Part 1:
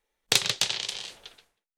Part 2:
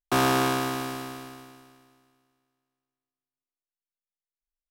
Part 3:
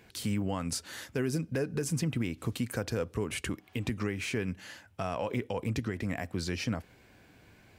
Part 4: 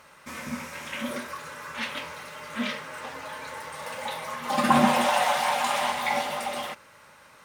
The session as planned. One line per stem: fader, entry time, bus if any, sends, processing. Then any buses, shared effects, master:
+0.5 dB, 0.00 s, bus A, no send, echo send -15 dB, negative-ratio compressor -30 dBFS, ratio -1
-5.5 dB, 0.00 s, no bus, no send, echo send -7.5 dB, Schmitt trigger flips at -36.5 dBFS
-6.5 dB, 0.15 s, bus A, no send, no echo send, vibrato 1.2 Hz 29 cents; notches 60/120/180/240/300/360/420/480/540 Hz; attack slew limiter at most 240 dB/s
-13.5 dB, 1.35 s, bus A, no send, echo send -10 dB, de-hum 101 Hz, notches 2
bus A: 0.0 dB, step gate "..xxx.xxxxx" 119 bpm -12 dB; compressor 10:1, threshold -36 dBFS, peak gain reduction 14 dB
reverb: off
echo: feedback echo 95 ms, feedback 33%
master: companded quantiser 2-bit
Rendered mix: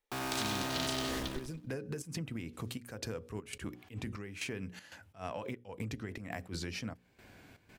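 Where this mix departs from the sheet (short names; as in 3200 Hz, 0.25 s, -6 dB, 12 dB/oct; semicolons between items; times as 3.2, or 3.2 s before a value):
stem 3 -6.5 dB -> +2.0 dB; stem 4: muted; master: missing companded quantiser 2-bit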